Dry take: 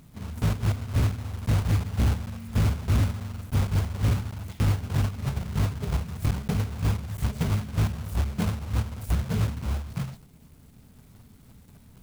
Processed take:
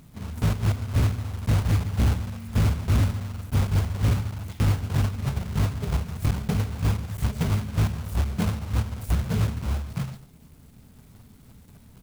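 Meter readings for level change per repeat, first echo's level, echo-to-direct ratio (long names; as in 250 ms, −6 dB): repeats not evenly spaced, −18.0 dB, −18.0 dB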